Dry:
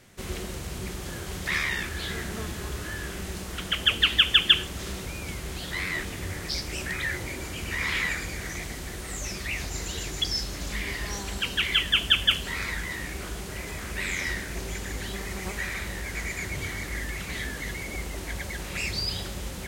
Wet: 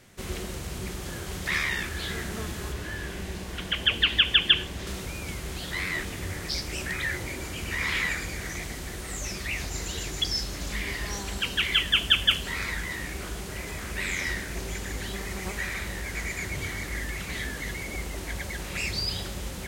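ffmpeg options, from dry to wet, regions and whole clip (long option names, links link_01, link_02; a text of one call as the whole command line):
ffmpeg -i in.wav -filter_complex "[0:a]asettb=1/sr,asplit=3[link_01][link_02][link_03];[link_01]atrim=end=2.724[link_04];[link_02]atrim=start=2.72:end=4.87,asetpts=PTS-STARTPTS,afade=type=in:duration=0.004:curve=qsin,afade=type=out:start_time=2.146:duration=0.004:curve=qsin,acrossover=split=4600[link_05][link_06];[link_06]acompressor=threshold=-47dB:ratio=4:attack=1:release=60[link_07];[link_05][link_07]amix=inputs=2:normalize=0,bandreject=frequency=1300:width=9.4[link_08];[link_03]atrim=start=4.866[link_09];[link_04][link_08]acrossfade=duration=0.004:curve1=hsin:curve2=qsin[link_10];[link_10][link_09]acrossfade=duration=0.004:curve1=qsin:curve2=hsin" out.wav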